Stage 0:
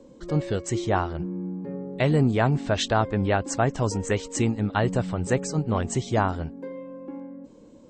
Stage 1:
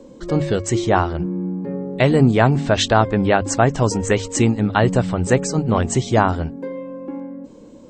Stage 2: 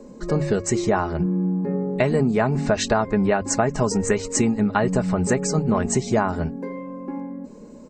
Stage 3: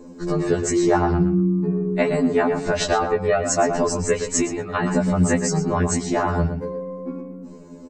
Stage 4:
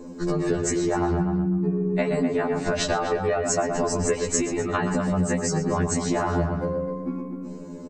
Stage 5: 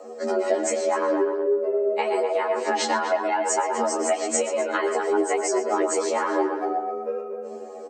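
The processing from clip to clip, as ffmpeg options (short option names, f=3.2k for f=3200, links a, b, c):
-af "bandreject=f=50:t=h:w=6,bandreject=f=100:t=h:w=6,bandreject=f=150:t=h:w=6,volume=7.5dB"
-af "equalizer=f=3.3k:t=o:w=0.32:g=-14,aecho=1:1:4.8:0.51,acompressor=threshold=-16dB:ratio=6"
-filter_complex "[0:a]asplit=2[a][b];[b]adelay=118,lowpass=f=3.5k:p=1,volume=-7.5dB,asplit=2[c][d];[d]adelay=118,lowpass=f=3.5k:p=1,volume=0.2,asplit=2[e][f];[f]adelay=118,lowpass=f=3.5k:p=1,volume=0.2[g];[a][c][e][g]amix=inputs=4:normalize=0,afftfilt=real='re*2*eq(mod(b,4),0)':imag='im*2*eq(mod(b,4),0)':win_size=2048:overlap=0.75,volume=3dB"
-filter_complex "[0:a]acompressor=threshold=-23dB:ratio=6,asplit=2[a][b];[b]adelay=253,lowpass=f=2.2k:p=1,volume=-7.5dB,asplit=2[c][d];[d]adelay=253,lowpass=f=2.2k:p=1,volume=0.18,asplit=2[e][f];[f]adelay=253,lowpass=f=2.2k:p=1,volume=0.18[g];[a][c][e][g]amix=inputs=4:normalize=0,volume=2dB"
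-af "afreqshift=220,flanger=delay=7:depth=4.3:regen=40:speed=1.1:shape=triangular,volume=4dB"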